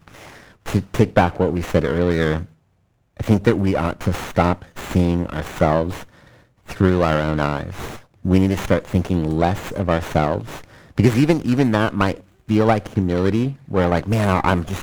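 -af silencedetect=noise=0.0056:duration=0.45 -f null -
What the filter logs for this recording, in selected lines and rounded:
silence_start: 2.53
silence_end: 3.17 | silence_duration: 0.63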